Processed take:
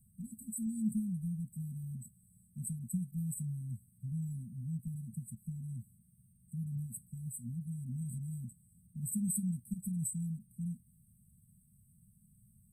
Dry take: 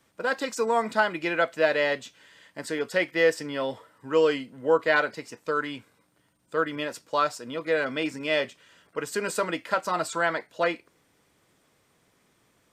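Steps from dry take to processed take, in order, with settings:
linear-phase brick-wall band-stop 230–7,800 Hz
low-shelf EQ 170 Hz +8 dB
level +3.5 dB

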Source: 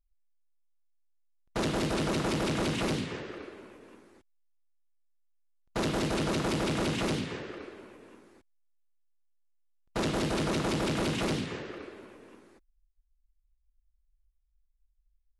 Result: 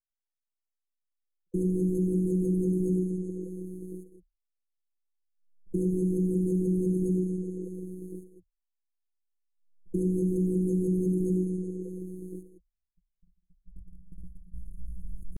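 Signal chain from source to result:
camcorder AGC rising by 8.5 dB per second
pitch shifter +6 semitones
noise gate −49 dBFS, range −58 dB
phases set to zero 184 Hz
leveller curve on the samples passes 2
linear-phase brick-wall band-stop 490–6,300 Hz
high shelf with overshoot 4,200 Hz −9.5 dB, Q 3
downsampling to 32,000 Hz
EQ curve with evenly spaced ripples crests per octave 1.2, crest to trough 12 dB
envelope flattener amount 50%
level −2.5 dB

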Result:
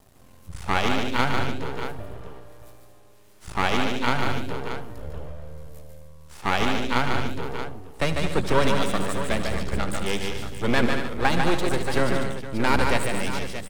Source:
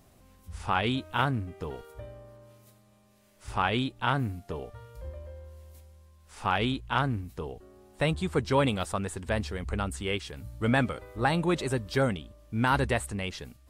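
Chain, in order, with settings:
half-wave rectification
multi-tap delay 77/147/219/288/465/629 ms −14/−4.5/−9.5/−14.5/−15/−10.5 dB
level +7 dB

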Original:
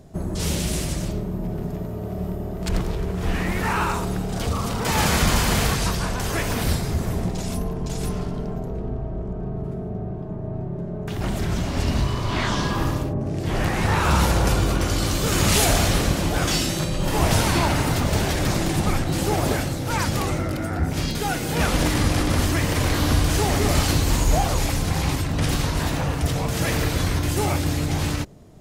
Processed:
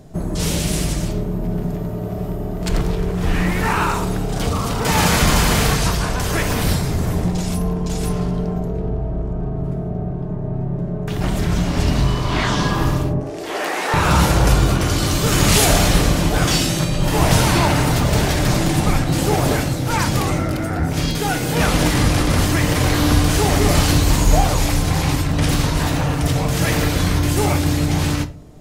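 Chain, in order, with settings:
0:13.20–0:13.94: high-pass filter 340 Hz 24 dB per octave
on a send: convolution reverb RT60 0.45 s, pre-delay 7 ms, DRR 10 dB
on the sum: level +4 dB

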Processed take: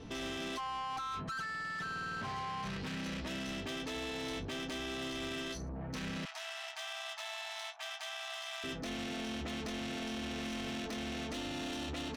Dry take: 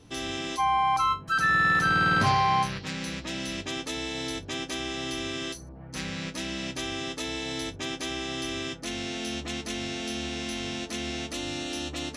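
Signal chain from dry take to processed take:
low-pass filter 6,300 Hz
high-shelf EQ 5,000 Hz −8 dB
comb filter 4.5 ms, depth 35%
compressor whose output falls as the input rises −31 dBFS, ratio −1
brickwall limiter −28.5 dBFS, peak gain reduction 11.5 dB
soft clipping −39.5 dBFS, distortion −10 dB
0:06.25–0:08.64: linear-phase brick-wall high-pass 620 Hz
level +3 dB

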